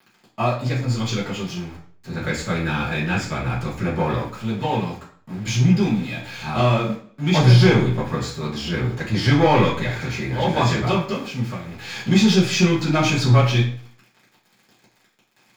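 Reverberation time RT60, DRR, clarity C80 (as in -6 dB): 0.50 s, -8.5 dB, 10.5 dB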